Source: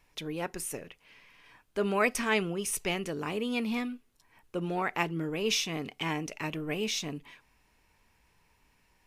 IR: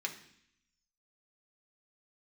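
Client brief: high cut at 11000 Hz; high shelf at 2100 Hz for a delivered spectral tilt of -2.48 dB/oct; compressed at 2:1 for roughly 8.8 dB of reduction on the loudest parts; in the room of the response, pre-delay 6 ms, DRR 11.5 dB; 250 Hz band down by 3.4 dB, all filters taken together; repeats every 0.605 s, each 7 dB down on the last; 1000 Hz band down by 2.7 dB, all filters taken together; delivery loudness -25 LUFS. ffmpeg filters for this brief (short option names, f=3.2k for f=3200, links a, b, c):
-filter_complex "[0:a]lowpass=11k,equalizer=f=250:t=o:g=-4.5,equalizer=f=1k:t=o:g=-5,highshelf=f=2.1k:g=7.5,acompressor=threshold=-36dB:ratio=2,aecho=1:1:605|1210|1815|2420|3025:0.447|0.201|0.0905|0.0407|0.0183,asplit=2[a][b];[1:a]atrim=start_sample=2205,adelay=6[c];[b][c]afir=irnorm=-1:irlink=0,volume=-13.5dB[d];[a][d]amix=inputs=2:normalize=0,volume=10.5dB"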